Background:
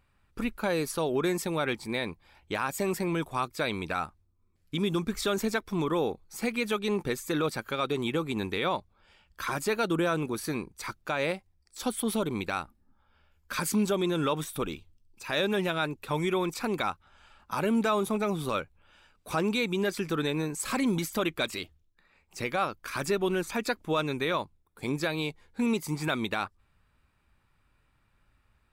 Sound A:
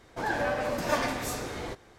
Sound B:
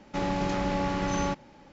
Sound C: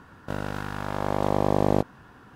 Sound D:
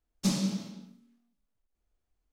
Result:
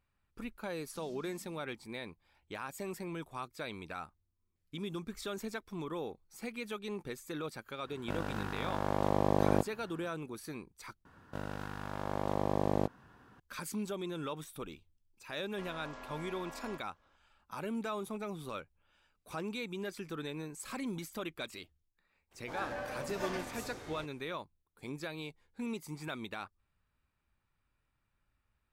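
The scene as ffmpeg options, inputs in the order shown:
-filter_complex "[3:a]asplit=2[a][b];[0:a]volume=-11.5dB[c];[4:a]acompressor=threshold=-39dB:ratio=6:attack=3.2:release=140:knee=1:detection=peak[d];[2:a]aeval=exprs='val(0)*sin(2*PI*820*n/s)':c=same[e];[c]asplit=2[f][g];[f]atrim=end=11.054[h];[b]atrim=end=2.35,asetpts=PTS-STARTPTS,volume=-9.5dB[i];[g]atrim=start=13.396[j];[d]atrim=end=2.32,asetpts=PTS-STARTPTS,volume=-14.5dB,afade=t=in:d=0.004:c=hsin,afade=t=out:st=2.316:d=0.004:c=hsin,adelay=720[k];[a]atrim=end=2.35,asetpts=PTS-STARTPTS,volume=-6.5dB,afade=t=in:d=0.1,afade=t=out:st=2.25:d=0.1,adelay=7800[l];[e]atrim=end=1.72,asetpts=PTS-STARTPTS,volume=-17dB,afade=t=in:d=0.004:c=hsin,afade=t=out:st=1.716:d=0.004:c=hsin,adelay=15440[m];[1:a]atrim=end=1.98,asetpts=PTS-STARTPTS,volume=-11.5dB,afade=t=in:d=0.004:c=hsin,afade=t=out:st=1.976:d=0.004:c=hsin,adelay=22310[n];[h][i]acrossfade=d=0.004:c1=hsin:c2=hsin[o];[o][j]acrossfade=d=0.004:c1=hsin:c2=hsin[p];[p][k][l][m][n]amix=inputs=5:normalize=0"

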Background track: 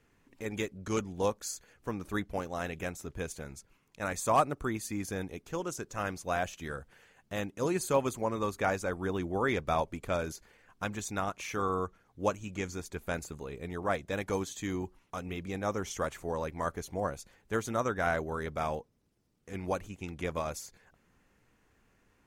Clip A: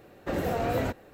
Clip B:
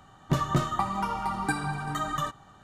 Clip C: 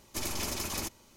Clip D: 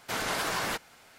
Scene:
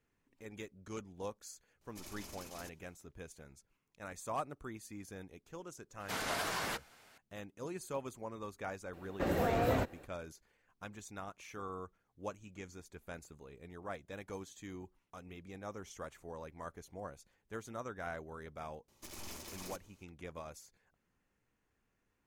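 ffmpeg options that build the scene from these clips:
-filter_complex "[3:a]asplit=2[a][b];[0:a]volume=-12.5dB[c];[b]aeval=exprs='(tanh(56.2*val(0)+0.55)-tanh(0.55))/56.2':c=same[d];[a]atrim=end=1.16,asetpts=PTS-STARTPTS,volume=-16.5dB,afade=t=in:d=0.004:c=hsin,afade=t=out:st=1.156:d=0.004:c=hsin,adelay=1810[e];[4:a]atrim=end=1.18,asetpts=PTS-STARTPTS,volume=-6.5dB,afade=t=in:d=0.004:c=hsin,afade=t=out:st=1.176:d=0.004:c=hsin,adelay=6000[f];[1:a]atrim=end=1.13,asetpts=PTS-STARTPTS,volume=-3.5dB,afade=t=in:d=0.004:c=hsin,afade=t=out:st=1.126:d=0.004:c=hsin,adelay=8930[g];[d]atrim=end=1.16,asetpts=PTS-STARTPTS,volume=-8.5dB,afade=t=in:d=0.004:c=hsin,afade=t=out:st=1.156:d=0.004:c=hsin,adelay=18880[h];[c][e][f][g][h]amix=inputs=5:normalize=0"

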